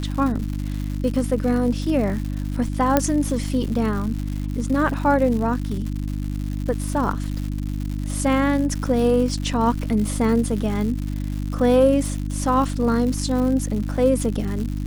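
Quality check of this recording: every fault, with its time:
crackle 190 per s -28 dBFS
hum 50 Hz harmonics 6 -26 dBFS
2.97 s: pop -3 dBFS

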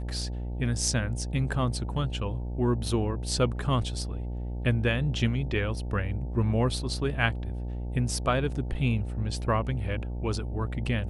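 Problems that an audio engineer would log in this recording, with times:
buzz 60 Hz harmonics 15 -33 dBFS

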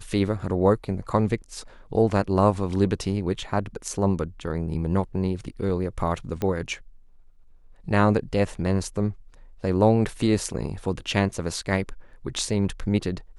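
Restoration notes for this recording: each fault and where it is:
6.42 s: pop -15 dBFS

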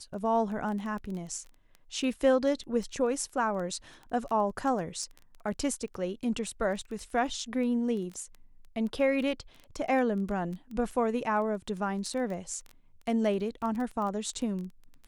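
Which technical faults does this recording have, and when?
crackle 11 per s -35 dBFS

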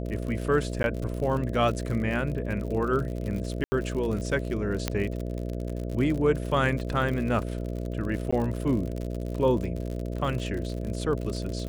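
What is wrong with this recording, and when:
buzz 60 Hz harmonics 11 -32 dBFS
crackle 64 per s -32 dBFS
0.83–0.84 s: dropout
3.64–3.72 s: dropout 80 ms
4.88 s: pop -10 dBFS
8.31–8.32 s: dropout 15 ms

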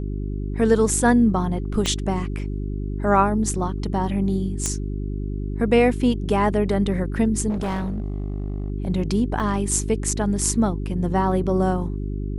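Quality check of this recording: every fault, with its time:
hum 50 Hz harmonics 8 -27 dBFS
1.86 s: pop -9 dBFS
4.66 s: pop -10 dBFS
7.49–8.70 s: clipped -22 dBFS
9.40 s: dropout 2.2 ms

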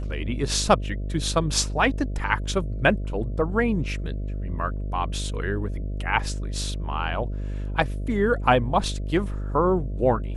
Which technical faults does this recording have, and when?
buzz 50 Hz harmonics 13 -29 dBFS

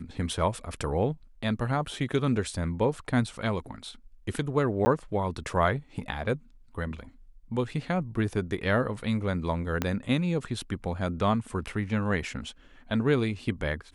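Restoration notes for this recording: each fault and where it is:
4.85–4.86 s: dropout 10 ms
9.82 s: pop -12 dBFS

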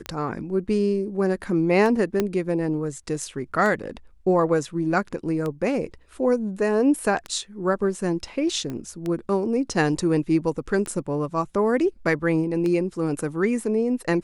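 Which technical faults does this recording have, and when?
tick 33 1/3 rpm -16 dBFS
2.20 s: pop -9 dBFS
8.70 s: pop -20 dBFS

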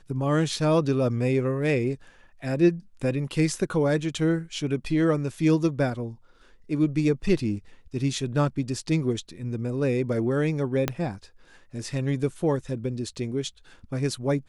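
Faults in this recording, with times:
10.88 s: pop -9 dBFS

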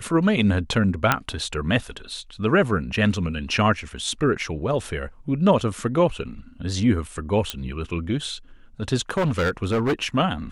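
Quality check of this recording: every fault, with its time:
1.12 s: pop -3 dBFS
7.50 s: pop -9 dBFS
9.10–10.15 s: clipped -17.5 dBFS

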